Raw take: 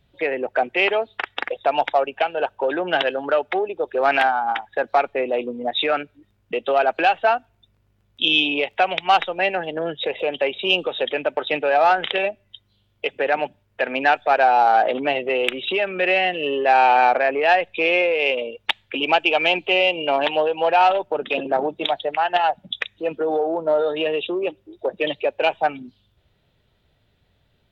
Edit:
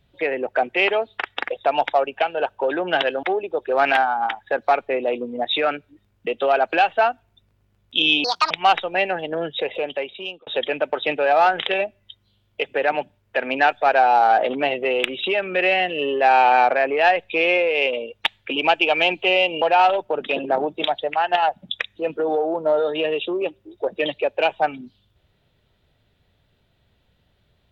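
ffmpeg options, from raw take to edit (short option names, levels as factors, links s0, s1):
-filter_complex "[0:a]asplit=6[s0][s1][s2][s3][s4][s5];[s0]atrim=end=3.232[s6];[s1]atrim=start=3.488:end=8.504[s7];[s2]atrim=start=8.5:end=8.95,asetpts=PTS-STARTPTS,asetrate=74529,aresample=44100[s8];[s3]atrim=start=8.946:end=10.91,asetpts=PTS-STARTPTS,afade=t=out:st=1.134:d=0.83[s9];[s4]atrim=start=10.91:end=20.062,asetpts=PTS-STARTPTS,afade=t=in:d=0.004:c=hsin[s10];[s5]atrim=start=20.628[s11];[s6][s7]acrossfade=d=0.004:c1=hsin:c2=hsin[s12];[s12][s8]acrossfade=d=0.004:c1=hsin:c2=hsin[s13];[s9][s10]concat=n=2:v=0:a=1[s14];[s13][s14]acrossfade=d=0.004:c1=hsin:c2=hsin[s15];[s15][s11]acrossfade=d=0.004:c1=hsin:c2=hsin"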